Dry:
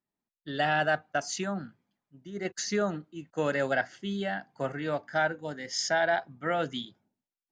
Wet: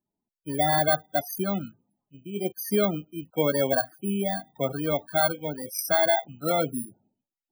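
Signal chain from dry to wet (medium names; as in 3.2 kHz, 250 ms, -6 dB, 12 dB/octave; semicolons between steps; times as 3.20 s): bit-reversed sample order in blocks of 16 samples; loudest bins only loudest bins 32; trim +5.5 dB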